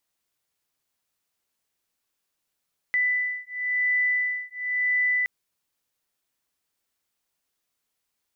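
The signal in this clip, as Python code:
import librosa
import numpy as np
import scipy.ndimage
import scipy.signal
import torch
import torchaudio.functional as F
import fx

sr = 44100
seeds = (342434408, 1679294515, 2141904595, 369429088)

y = fx.two_tone_beats(sr, length_s=2.32, hz=1990.0, beat_hz=0.96, level_db=-25.5)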